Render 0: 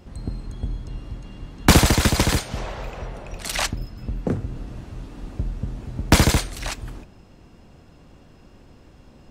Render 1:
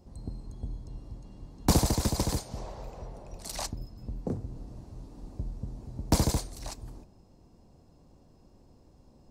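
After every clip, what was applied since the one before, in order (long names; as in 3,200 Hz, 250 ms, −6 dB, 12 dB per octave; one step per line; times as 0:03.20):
flat-topped bell 2,100 Hz −11 dB
level −9 dB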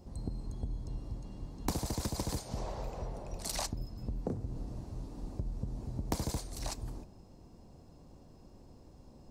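downward compressor 10 to 1, threshold −34 dBFS, peak gain reduction 17 dB
level +2.5 dB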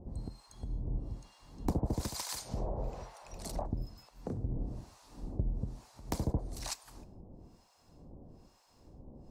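two-band tremolo in antiphase 1.1 Hz, depth 100%, crossover 880 Hz
level +4.5 dB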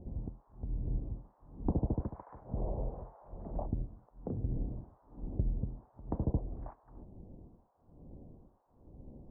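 Gaussian smoothing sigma 8.7 samples
level +1 dB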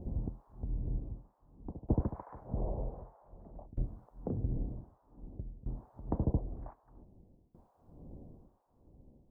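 shaped tremolo saw down 0.53 Hz, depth 95%
level +4.5 dB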